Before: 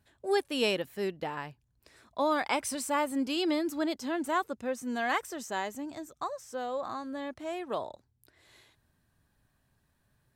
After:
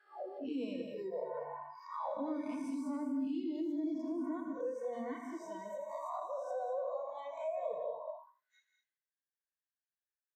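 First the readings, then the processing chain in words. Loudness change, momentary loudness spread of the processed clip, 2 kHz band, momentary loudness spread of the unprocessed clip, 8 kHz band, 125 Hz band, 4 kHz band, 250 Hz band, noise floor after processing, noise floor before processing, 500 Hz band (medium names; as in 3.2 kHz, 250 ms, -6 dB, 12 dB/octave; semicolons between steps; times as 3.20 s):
-7.5 dB, 8 LU, -20.5 dB, 10 LU, under -20 dB, no reading, under -20 dB, -4.0 dB, under -85 dBFS, -74 dBFS, -6.0 dB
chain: reverse spectral sustain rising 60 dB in 0.90 s; hum notches 60/120/180/240/300 Hz; gate -56 dBFS, range -14 dB; treble shelf 2.8 kHz +11.5 dB; on a send: feedback delay 82 ms, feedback 50%, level -6.5 dB; on the sum: auto-wah 280–1700 Hz, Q 3.6, down, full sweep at -23.5 dBFS; in parallel at +1 dB: peak limiter -29.5 dBFS, peak gain reduction 7 dB; on the sum: bass shelf 110 Hz -9.5 dB; spectral noise reduction 24 dB; gated-style reverb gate 230 ms rising, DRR 6 dB; compression 2:1, threshold -41 dBFS, peak gain reduction 10 dB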